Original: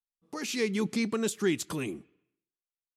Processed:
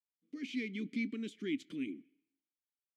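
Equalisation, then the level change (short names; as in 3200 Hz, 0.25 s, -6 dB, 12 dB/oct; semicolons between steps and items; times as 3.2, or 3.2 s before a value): vowel filter i; +2.0 dB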